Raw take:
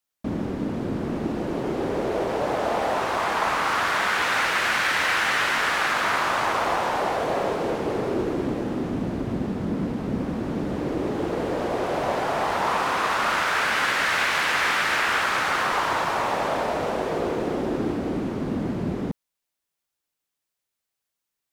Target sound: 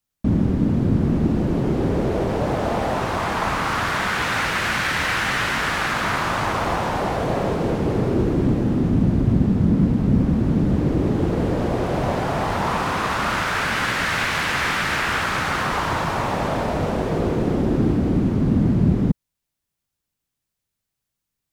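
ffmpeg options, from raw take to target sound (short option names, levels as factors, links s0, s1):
-af "bass=f=250:g=15,treble=f=4000:g=1"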